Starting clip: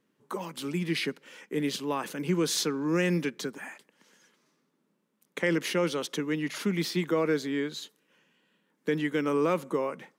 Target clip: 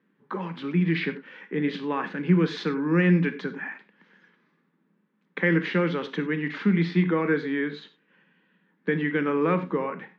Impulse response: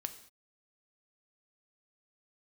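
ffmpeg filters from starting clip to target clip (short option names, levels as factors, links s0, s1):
-filter_complex "[0:a]highpass=150,equalizer=f=180:t=q:w=4:g=10,equalizer=f=610:t=q:w=4:g=-6,equalizer=f=1700:t=q:w=4:g=6,equalizer=f=2900:t=q:w=4:g=-4,lowpass=f=3200:w=0.5412,lowpass=f=3200:w=1.3066[s0];[1:a]atrim=start_sample=2205,atrim=end_sample=4410,asetrate=39249,aresample=44100[s1];[s0][s1]afir=irnorm=-1:irlink=0,volume=1.58"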